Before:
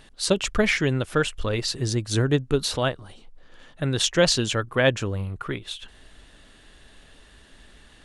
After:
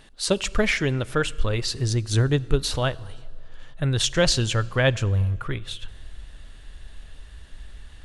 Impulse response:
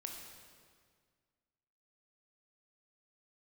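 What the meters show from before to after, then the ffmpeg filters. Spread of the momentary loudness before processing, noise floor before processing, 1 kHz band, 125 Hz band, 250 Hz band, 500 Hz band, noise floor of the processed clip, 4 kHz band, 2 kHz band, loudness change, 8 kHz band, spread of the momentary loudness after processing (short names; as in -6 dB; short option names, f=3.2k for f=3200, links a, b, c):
12 LU, -53 dBFS, -0.5 dB, +3.5 dB, -1.5 dB, -1.5 dB, -45 dBFS, -0.5 dB, -0.5 dB, 0.0 dB, -0.5 dB, 12 LU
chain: -filter_complex "[0:a]asubboost=boost=5:cutoff=110,asplit=2[a][b];[1:a]atrim=start_sample=2205[c];[b][c]afir=irnorm=-1:irlink=0,volume=-13.5dB[d];[a][d]amix=inputs=2:normalize=0,volume=-1.5dB"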